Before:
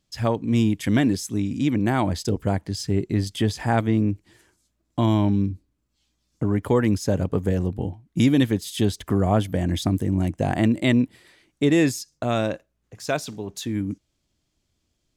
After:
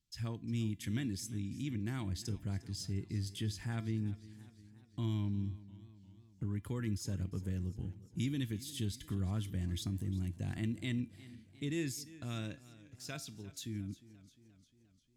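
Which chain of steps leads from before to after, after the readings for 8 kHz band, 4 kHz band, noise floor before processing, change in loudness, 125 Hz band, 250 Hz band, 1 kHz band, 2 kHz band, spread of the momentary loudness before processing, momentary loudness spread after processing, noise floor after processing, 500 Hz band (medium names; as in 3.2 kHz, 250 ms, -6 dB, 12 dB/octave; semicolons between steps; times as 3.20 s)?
-11.5 dB, -13.0 dB, -74 dBFS, -16.0 dB, -12.5 dB, -18.0 dB, -26.0 dB, -18.0 dB, 9 LU, 12 LU, -67 dBFS, -24.0 dB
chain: amplifier tone stack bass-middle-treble 6-0-2; in parallel at -2 dB: peak limiter -36 dBFS, peak gain reduction 10.5 dB; on the sum: feedback comb 340 Hz, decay 0.32 s, harmonics all, mix 60%; modulated delay 352 ms, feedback 56%, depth 60 cents, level -18 dB; trim +5.5 dB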